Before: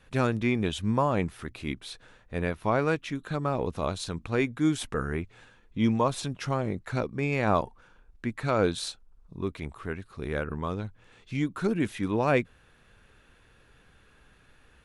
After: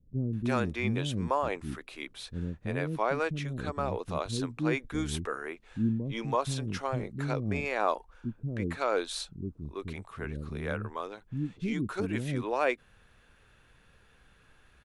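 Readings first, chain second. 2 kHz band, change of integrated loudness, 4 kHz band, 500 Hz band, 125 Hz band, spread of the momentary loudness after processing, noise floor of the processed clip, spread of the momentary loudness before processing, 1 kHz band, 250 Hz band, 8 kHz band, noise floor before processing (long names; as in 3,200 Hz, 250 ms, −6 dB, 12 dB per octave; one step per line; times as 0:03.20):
−2.0 dB, −3.5 dB, −2.0 dB, −3.5 dB, −2.0 dB, 10 LU, −62 dBFS, 12 LU, −2.0 dB, −4.0 dB, −2.0 dB, −60 dBFS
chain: multiband delay without the direct sound lows, highs 330 ms, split 330 Hz
level −2 dB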